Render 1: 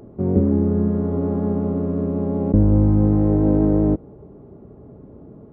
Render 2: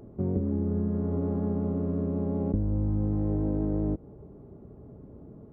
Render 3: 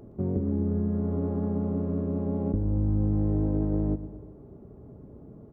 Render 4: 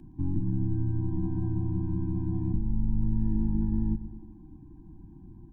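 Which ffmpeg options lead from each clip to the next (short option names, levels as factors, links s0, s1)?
-af "lowshelf=f=140:g=5.5,acompressor=threshold=0.141:ratio=6,volume=0.447"
-af "aecho=1:1:116|232|348|464|580:0.178|0.0996|0.0558|0.0312|0.0175"
-af "afreqshift=-93,afftfilt=real='re*eq(mod(floor(b*sr/1024/370),2),0)':imag='im*eq(mod(floor(b*sr/1024/370),2),0)':win_size=1024:overlap=0.75"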